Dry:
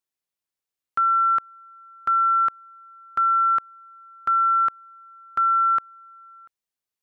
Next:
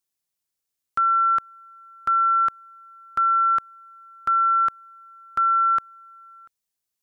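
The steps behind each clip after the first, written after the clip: tone controls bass +4 dB, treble +7 dB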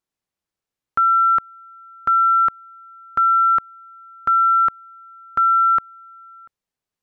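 LPF 1500 Hz 6 dB/oct; gain +6.5 dB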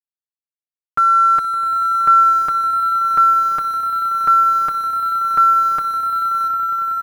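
bit-crush 7-bit; comb 6.5 ms, depth 83%; on a send: swelling echo 94 ms, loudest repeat 8, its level -13.5 dB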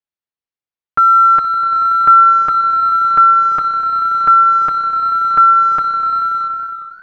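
ending faded out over 0.92 s; air absorption 160 m; warbling echo 0.402 s, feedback 53%, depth 86 cents, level -23 dB; gain +5 dB

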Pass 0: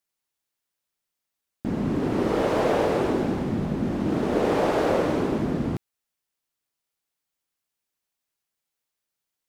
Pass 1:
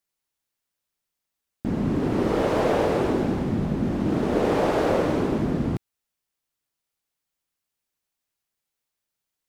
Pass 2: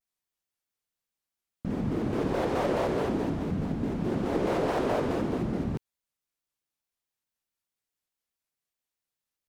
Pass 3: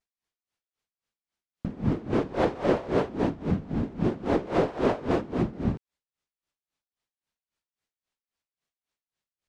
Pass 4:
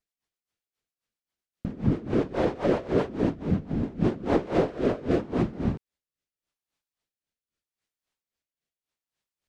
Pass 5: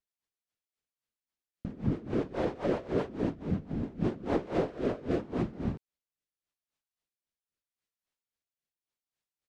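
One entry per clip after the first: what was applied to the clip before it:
low shelf 140 Hz +4.5 dB
shaped vibrato square 4.7 Hz, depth 250 cents; gain -5.5 dB
air absorption 69 m; dB-linear tremolo 3.7 Hz, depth 20 dB; gain +7 dB
rotary speaker horn 7.5 Hz, later 0.8 Hz, at 3.58; gain +2.5 dB
downsampling 32000 Hz; gain -6 dB

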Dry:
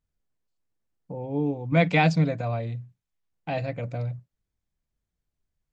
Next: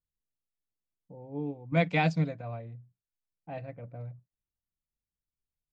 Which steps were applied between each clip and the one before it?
low-pass opened by the level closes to 620 Hz, open at -17 dBFS; upward expander 1.5:1, over -32 dBFS; gain -4.5 dB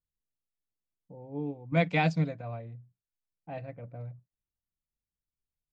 nothing audible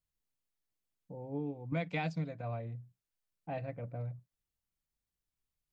compressor 4:1, threshold -36 dBFS, peak gain reduction 13.5 dB; gain +2 dB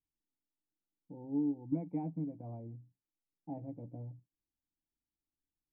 vocal tract filter u; gain +8 dB

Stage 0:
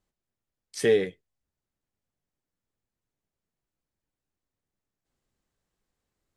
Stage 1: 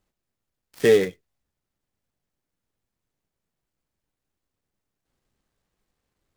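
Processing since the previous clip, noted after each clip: switching dead time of 0.091 ms; gain +5 dB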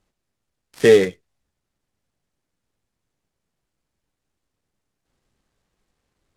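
LPF 11000 Hz 12 dB/oct; gain +4.5 dB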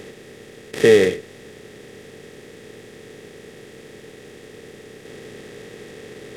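per-bin compression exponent 0.4; gain -2 dB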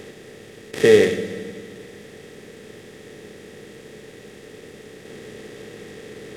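reverb RT60 2.1 s, pre-delay 14 ms, DRR 8 dB; gain -1 dB

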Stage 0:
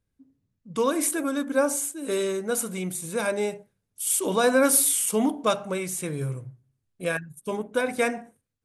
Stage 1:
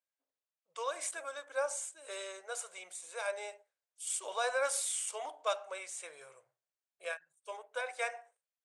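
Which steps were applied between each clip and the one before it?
elliptic band-pass 590–8300 Hz, stop band 40 dB; ending taper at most 360 dB/s; gain -8.5 dB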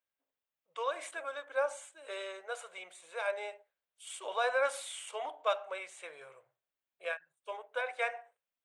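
band shelf 7600 Hz -13 dB; gain +2.5 dB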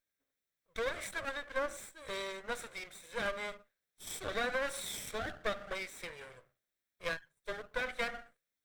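minimum comb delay 0.53 ms; compressor 4:1, threshold -36 dBFS, peak gain reduction 9 dB; gain +4 dB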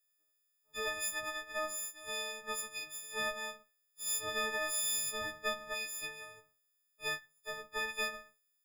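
frequency quantiser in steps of 6 st; gain -5 dB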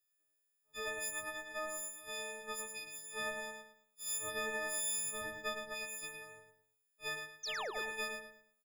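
painted sound fall, 7.43–7.71, 350–6700 Hz -37 dBFS; on a send: feedback echo 0.109 s, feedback 29%, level -6 dB; on the sum: gain -4 dB

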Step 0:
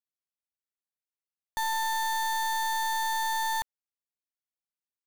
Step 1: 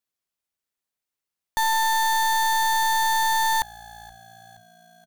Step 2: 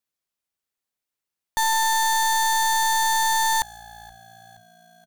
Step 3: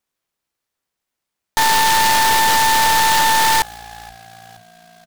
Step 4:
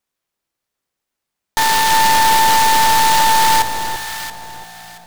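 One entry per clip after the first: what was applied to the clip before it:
frequency-shifting echo 0.473 s, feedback 56%, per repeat -57 Hz, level -23.5 dB; gain +7.5 dB
dynamic EQ 7300 Hz, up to +6 dB, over -45 dBFS, Q 1.2
noise-modulated delay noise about 2600 Hz, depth 0.065 ms; gain +7 dB
echo with dull and thin repeats by turns 0.339 s, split 990 Hz, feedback 51%, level -4 dB

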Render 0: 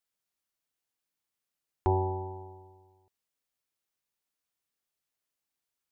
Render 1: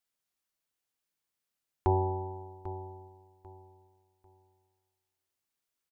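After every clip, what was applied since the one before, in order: feedback echo 0.794 s, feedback 26%, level -14 dB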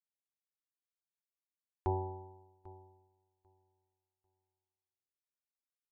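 upward expander 1.5:1, over -52 dBFS; gain -6.5 dB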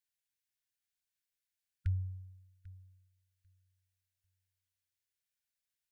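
brick-wall FIR band-stop 150–1400 Hz; gain +5 dB

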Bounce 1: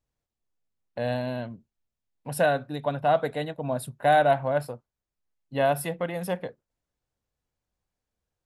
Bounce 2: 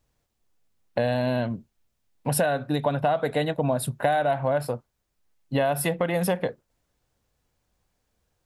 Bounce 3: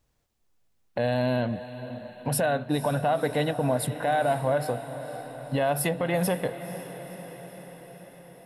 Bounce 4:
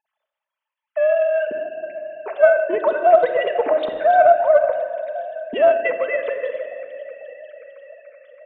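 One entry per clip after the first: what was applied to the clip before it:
in parallel at +1.5 dB: limiter -20.5 dBFS, peak gain reduction 10.5 dB; on the sum: compressor 6:1, threshold -25 dBFS, peak gain reduction 12 dB; gain +4.5 dB
limiter -16 dBFS, peak gain reduction 7.5 dB; diffused feedback echo 0.504 s, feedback 65%, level -12.5 dB
sine-wave speech; shoebox room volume 3800 m³, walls mixed, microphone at 1.5 m; Doppler distortion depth 0.11 ms; gain +6.5 dB

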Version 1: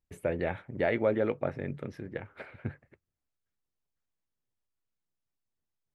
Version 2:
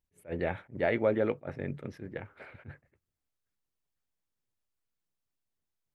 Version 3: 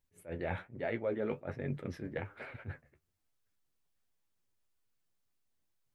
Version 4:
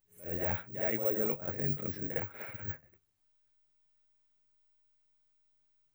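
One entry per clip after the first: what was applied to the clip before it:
attack slew limiter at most 280 dB/s
reverse; compressor 4:1, threshold -37 dBFS, peak gain reduction 13.5 dB; reverse; flange 1.2 Hz, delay 7 ms, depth 7.4 ms, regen +44%; gain +7 dB
reverse echo 57 ms -7.5 dB; careless resampling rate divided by 2×, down none, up zero stuff

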